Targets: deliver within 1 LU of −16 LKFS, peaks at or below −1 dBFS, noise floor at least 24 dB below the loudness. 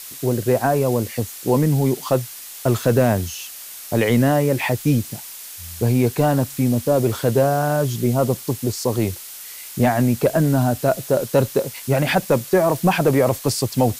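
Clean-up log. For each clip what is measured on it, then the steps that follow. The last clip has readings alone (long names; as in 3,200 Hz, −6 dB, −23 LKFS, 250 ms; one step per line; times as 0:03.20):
background noise floor −36 dBFS; target noise floor −44 dBFS; integrated loudness −19.5 LKFS; sample peak −5.5 dBFS; target loudness −16.0 LKFS
→ broadband denoise 8 dB, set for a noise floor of −36 dBFS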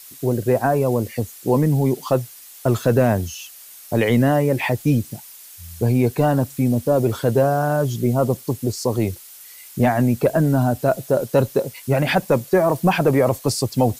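background noise floor −42 dBFS; target noise floor −44 dBFS
→ broadband denoise 6 dB, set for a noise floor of −42 dBFS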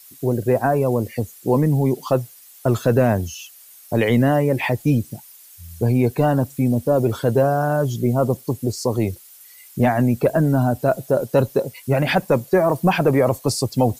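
background noise floor −46 dBFS; integrated loudness −20.0 LKFS; sample peak −6.5 dBFS; target loudness −16.0 LKFS
→ level +4 dB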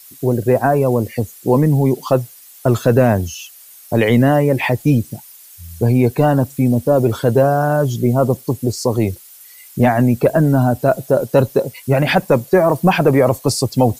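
integrated loudness −16.0 LKFS; sample peak −2.5 dBFS; background noise floor −42 dBFS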